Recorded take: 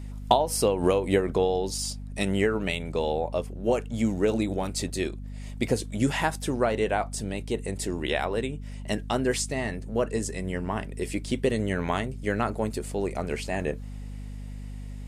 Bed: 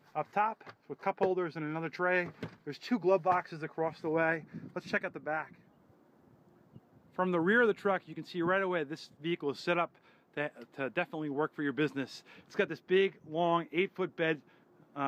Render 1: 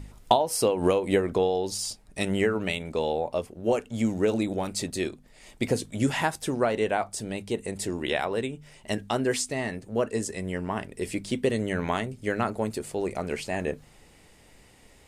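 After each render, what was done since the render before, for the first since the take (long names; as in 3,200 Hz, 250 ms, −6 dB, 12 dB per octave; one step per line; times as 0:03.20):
hum removal 50 Hz, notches 5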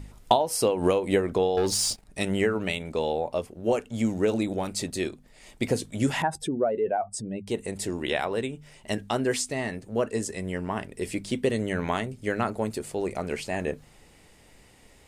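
0:01.57–0:02.05: leveller curve on the samples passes 2
0:06.22–0:07.47: expanding power law on the bin magnitudes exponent 1.9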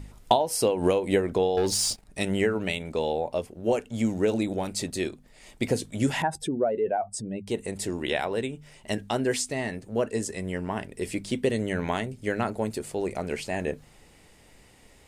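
dynamic equaliser 1,200 Hz, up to −5 dB, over −48 dBFS, Q 4.6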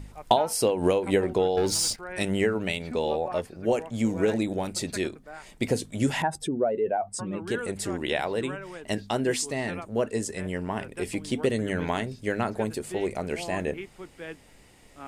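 mix in bed −8.5 dB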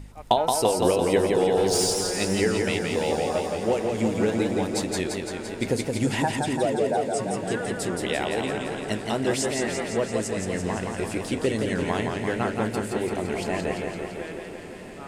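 feedback delay with all-pass diffusion 1,323 ms, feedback 44%, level −15.5 dB
feedback echo with a swinging delay time 170 ms, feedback 70%, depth 94 cents, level −4 dB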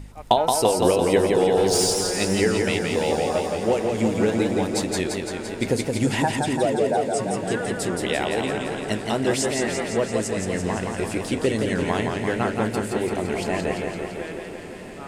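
level +2.5 dB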